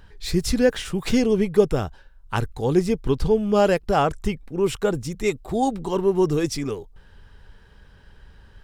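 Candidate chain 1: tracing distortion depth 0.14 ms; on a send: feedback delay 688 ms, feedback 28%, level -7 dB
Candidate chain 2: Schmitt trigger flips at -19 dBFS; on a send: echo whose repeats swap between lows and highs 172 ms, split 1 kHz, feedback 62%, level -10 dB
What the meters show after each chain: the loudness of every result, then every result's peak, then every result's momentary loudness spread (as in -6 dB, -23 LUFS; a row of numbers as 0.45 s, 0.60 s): -22.5 LUFS, -28.0 LUFS; -4.0 dBFS, -15.5 dBFS; 11 LU, 8 LU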